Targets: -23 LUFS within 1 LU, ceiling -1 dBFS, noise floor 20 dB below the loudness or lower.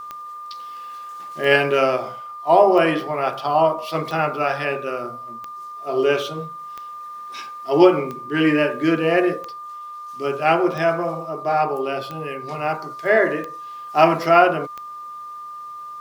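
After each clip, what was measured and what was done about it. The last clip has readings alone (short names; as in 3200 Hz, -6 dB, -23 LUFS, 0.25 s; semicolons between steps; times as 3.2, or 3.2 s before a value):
clicks 12; steady tone 1200 Hz; tone level -32 dBFS; loudness -19.5 LUFS; peak -1.0 dBFS; loudness target -23.0 LUFS
-> de-click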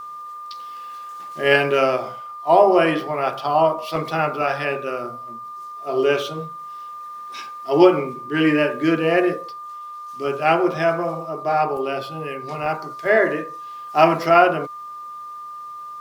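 clicks 0; steady tone 1200 Hz; tone level -32 dBFS
-> notch 1200 Hz, Q 30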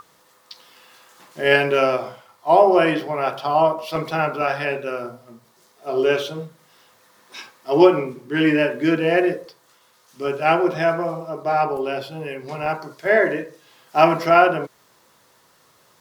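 steady tone none; loudness -20.0 LUFS; peak -1.5 dBFS; loudness target -23.0 LUFS
-> gain -3 dB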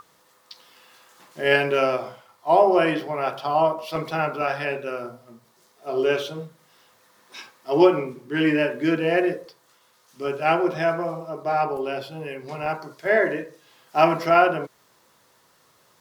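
loudness -23.0 LUFS; peak -4.5 dBFS; noise floor -61 dBFS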